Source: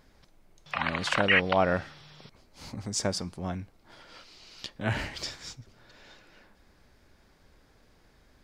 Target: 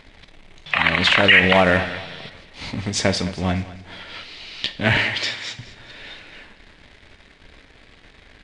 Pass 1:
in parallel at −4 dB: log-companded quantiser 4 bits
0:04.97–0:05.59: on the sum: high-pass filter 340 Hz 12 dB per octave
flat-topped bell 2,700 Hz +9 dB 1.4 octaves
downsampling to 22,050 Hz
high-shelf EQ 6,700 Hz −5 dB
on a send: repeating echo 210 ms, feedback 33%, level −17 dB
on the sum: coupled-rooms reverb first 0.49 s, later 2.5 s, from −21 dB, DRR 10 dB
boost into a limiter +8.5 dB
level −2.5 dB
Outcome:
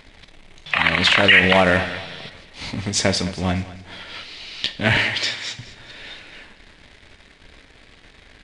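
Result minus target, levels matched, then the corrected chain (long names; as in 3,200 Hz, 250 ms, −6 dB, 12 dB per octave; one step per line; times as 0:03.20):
8,000 Hz band +3.5 dB
in parallel at −4 dB: log-companded quantiser 4 bits
0:04.97–0:05.59: on the sum: high-pass filter 340 Hz 12 dB per octave
flat-topped bell 2,700 Hz +9 dB 1.4 octaves
downsampling to 22,050 Hz
high-shelf EQ 6,700 Hz −12 dB
on a send: repeating echo 210 ms, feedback 33%, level −17 dB
on the sum: coupled-rooms reverb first 0.49 s, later 2.5 s, from −21 dB, DRR 10 dB
boost into a limiter +8.5 dB
level −2.5 dB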